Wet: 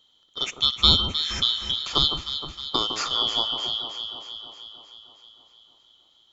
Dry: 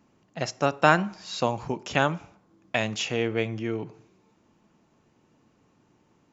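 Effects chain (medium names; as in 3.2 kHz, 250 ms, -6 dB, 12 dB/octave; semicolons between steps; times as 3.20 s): four frequency bands reordered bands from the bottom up 2413; echo whose repeats swap between lows and highs 156 ms, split 1.4 kHz, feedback 77%, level -7 dB; trim +1.5 dB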